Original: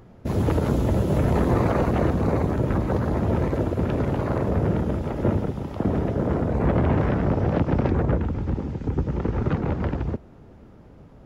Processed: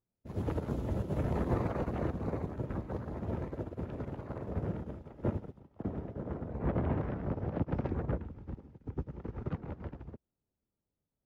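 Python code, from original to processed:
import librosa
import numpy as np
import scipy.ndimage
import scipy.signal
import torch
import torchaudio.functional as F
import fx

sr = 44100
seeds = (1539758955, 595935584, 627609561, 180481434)

y = fx.high_shelf(x, sr, hz=3400.0, db=fx.steps((0.0, -5.0), (5.58, -11.0), (7.71, -5.5)))
y = fx.upward_expand(y, sr, threshold_db=-40.0, expansion=2.5)
y = y * librosa.db_to_amplitude(-8.0)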